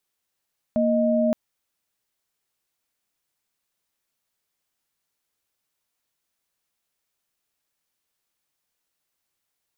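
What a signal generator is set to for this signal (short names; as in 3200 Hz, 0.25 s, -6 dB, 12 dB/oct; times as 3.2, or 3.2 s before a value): chord A#3/D#5 sine, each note -20.5 dBFS 0.57 s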